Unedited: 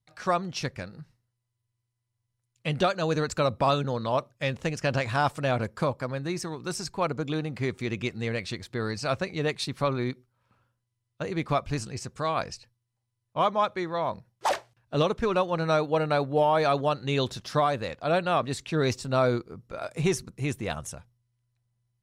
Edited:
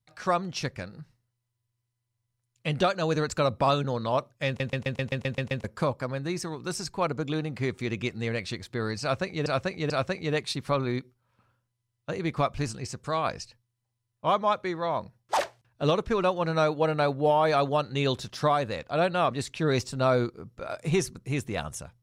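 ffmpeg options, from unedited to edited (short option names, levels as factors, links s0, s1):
-filter_complex "[0:a]asplit=12[s0][s1][s2][s3][s4][s5][s6][s7][s8][s9][s10][s11];[s0]atrim=end=4.602[s12];[s1]atrim=start=4.468:end=4.602[s13];[s2]atrim=start=4.468:end=4.602[s14];[s3]atrim=start=4.468:end=4.602[s15];[s4]atrim=start=4.468:end=4.602[s16];[s5]atrim=start=4.468:end=4.602[s17];[s6]atrim=start=4.468:end=4.602[s18];[s7]atrim=start=4.468:end=4.602[s19];[s8]atrim=start=4.468:end=4.602[s20];[s9]atrim=start=5.638:end=9.462[s21];[s10]atrim=start=9.018:end=9.462[s22];[s11]atrim=start=9.018[s23];[s12][s13]acrossfade=d=0.004:c1=hsin:c2=hsin[s24];[s24][s14]acrossfade=d=0.004:c1=hsin:c2=hsin[s25];[s25][s15]acrossfade=d=0.004:c1=hsin:c2=hsin[s26];[s26][s16]acrossfade=d=0.004:c1=hsin:c2=hsin[s27];[s27][s17]acrossfade=d=0.004:c1=hsin:c2=hsin[s28];[s28][s18]acrossfade=d=0.004:c1=hsin:c2=hsin[s29];[s29][s19]acrossfade=d=0.004:c1=hsin:c2=hsin[s30];[s30][s20]acrossfade=d=0.004:c1=hsin:c2=hsin[s31];[s31][s21]acrossfade=d=0.004:c1=hsin:c2=hsin[s32];[s32][s22]acrossfade=d=0.004:c1=hsin:c2=hsin[s33];[s33][s23]acrossfade=d=0.004:c1=hsin:c2=hsin"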